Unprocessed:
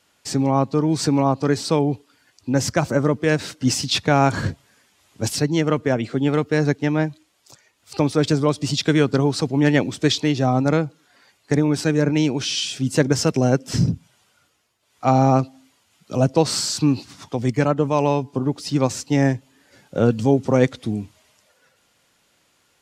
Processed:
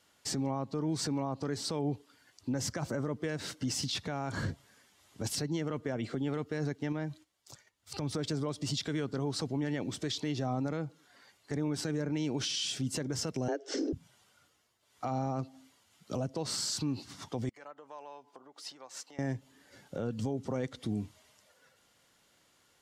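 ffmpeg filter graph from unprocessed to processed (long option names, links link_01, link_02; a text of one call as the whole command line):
ffmpeg -i in.wav -filter_complex "[0:a]asettb=1/sr,asplit=3[link_01][link_02][link_03];[link_01]atrim=end=6.924[link_04];[link_02]atrim=start=6.92:end=8.16,asetpts=PTS-STARTPTS,afade=type=in:duration=0.004:curve=qsin,afade=type=out:start_time=1.236:duration=0.004:curve=qsin,asubboost=boost=5:cutoff=190,acompressor=threshold=-25dB:ratio=3:attack=3.2:release=140:knee=1:detection=peak,agate=range=-10dB:threshold=-59dB:ratio=16:release=100:detection=peak[link_05];[link_03]atrim=start=8.156[link_06];[link_04][link_05]acrossfade=duration=0.004:curve1=hsin:curve2=qsin[link_07];[link_07][link_06]acrossfade=duration=0.004:curve1=qsin:curve2=hsin,asettb=1/sr,asplit=3[link_08][link_09][link_10];[link_08]atrim=end=13.484[link_11];[link_09]atrim=start=13.48:end=13.93,asetpts=PTS-STARTPTS,afade=type=in:duration=0.004:curve=qsin,afade=type=out:start_time=0.446:duration=0.004:curve=qsin,afreqshift=150,highpass=frequency=280:width=0.5412,highpass=frequency=280:width=1.3066,equalizer=frequency=490:width_type=q:width=4:gain=7,equalizer=frequency=1000:width_type=q:width=4:gain=-7,equalizer=frequency=1500:width_type=q:width=4:gain=6,lowpass=frequency=6700:width=0.5412,lowpass=frequency=6700:width=1.3066[link_12];[link_10]atrim=start=13.926[link_13];[link_11][link_12]acrossfade=duration=0.004:curve1=hsin:curve2=qsin[link_14];[link_14][link_13]acrossfade=duration=0.004:curve1=qsin:curve2=hsin,asettb=1/sr,asplit=3[link_15][link_16][link_17];[link_15]atrim=end=17.494[link_18];[link_16]atrim=start=17.49:end=19.19,asetpts=PTS-STARTPTS,afade=type=in:duration=0.004:curve=qsin,afade=type=out:start_time=1.696:duration=0.004:curve=qsin,highshelf=frequency=2300:gain=-9,acompressor=threshold=-31dB:ratio=6:attack=3.2:release=140:knee=1:detection=peak,highpass=820[link_19];[link_17]atrim=start=19.186[link_20];[link_18][link_19]acrossfade=duration=0.004:curve1=hsin:curve2=qsin[link_21];[link_21][link_20]acrossfade=duration=0.004:curve1=qsin:curve2=hsin,bandreject=frequency=2500:width=14,acompressor=threshold=-23dB:ratio=3,alimiter=limit=-20dB:level=0:latency=1:release=37,volume=-5dB" out.wav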